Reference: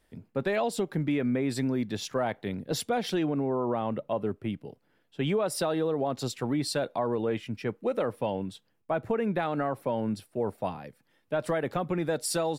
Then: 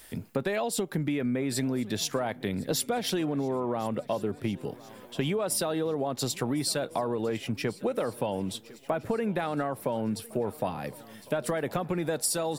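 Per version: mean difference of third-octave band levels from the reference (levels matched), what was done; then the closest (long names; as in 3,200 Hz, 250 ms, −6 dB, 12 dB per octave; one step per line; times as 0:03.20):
5.5 dB: high-shelf EQ 6,500 Hz +11 dB
downward compressor 6 to 1, threshold −35 dBFS, peak gain reduction 13 dB
on a send: feedback echo with a long and a short gap by turns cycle 1,408 ms, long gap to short 3 to 1, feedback 44%, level −21.5 dB
on the sum: one half of a high-frequency compander encoder only
level +8.5 dB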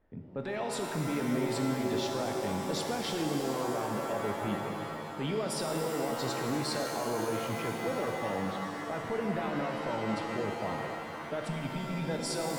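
13.0 dB: time-frequency box erased 0:11.44–0:12.08, 280–2,200 Hz
low-pass that shuts in the quiet parts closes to 1,300 Hz, open at −24 dBFS
brickwall limiter −27.5 dBFS, peak gain reduction 10.5 dB
reverb with rising layers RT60 3.1 s, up +7 semitones, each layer −2 dB, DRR 2.5 dB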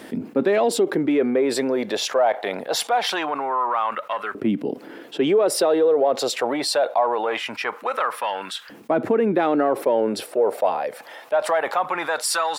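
7.5 dB: high-shelf EQ 4,400 Hz −6 dB
in parallel at −11.5 dB: soft clipping −28.5 dBFS, distortion −11 dB
on the sum: auto-filter high-pass saw up 0.23 Hz 240–1,500 Hz
envelope flattener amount 50%
level +2 dB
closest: first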